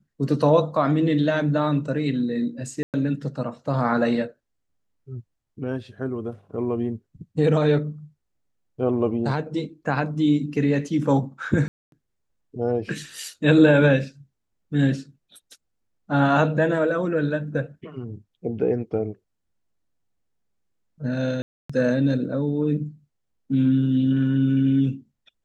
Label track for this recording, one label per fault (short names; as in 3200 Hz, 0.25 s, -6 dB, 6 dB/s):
2.830000	2.940000	gap 0.108 s
11.680000	11.920000	gap 0.242 s
21.420000	21.700000	gap 0.275 s